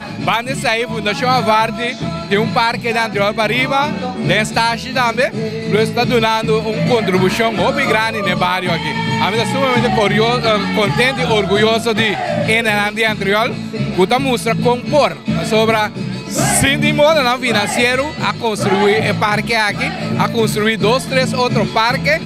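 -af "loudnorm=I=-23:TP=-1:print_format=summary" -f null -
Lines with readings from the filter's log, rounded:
Input Integrated:    -14.9 LUFS
Input True Peak:      -1.7 dBTP
Input LRA:             1.7 LU
Input Threshold:     -24.9 LUFS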